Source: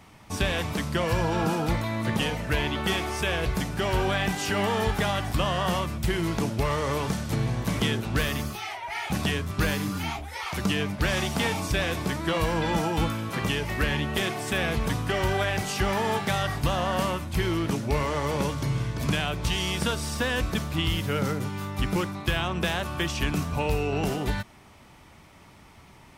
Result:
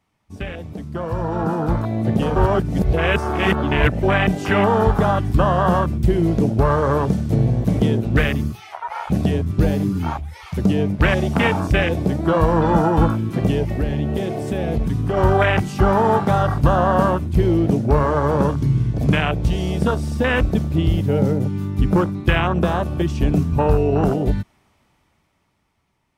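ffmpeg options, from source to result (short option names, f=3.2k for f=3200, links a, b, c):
-filter_complex "[0:a]asettb=1/sr,asplit=3[a][b][c];[a]atrim=end=13.644[d];[b]atrim=start=13.64:end=15.17,asetpts=PTS-STARTPTS,afade=t=in:d=0.004:c=qsin,afade=t=out:st=1.526:d=0.004:c=qsin,acompressor=threshold=-28dB:ratio=2:attack=3.2:release=140:knee=1:detection=peak[e];[c]atrim=start=15.166[f];[d][e]acrossfade=d=0.004:c1=hsin:c2=qsin[g];[g][f]acrossfade=d=0.004:c1=qsin:c2=hsin,asplit=3[h][i][j];[h]atrim=end=2.362[k];[i]atrim=start=2.358:end=4.032,asetpts=PTS-STARTPTS,areverse[l];[j]atrim=start=4.028[m];[k][l]acrossfade=d=0.004:c1=hsin:c2=hsin[n];[n][m]acrossfade=d=0.004:c1=hsin:c2=hsin,afwtdn=0.0447,dynaudnorm=f=250:g=13:m=16.5dB,volume=-2.5dB"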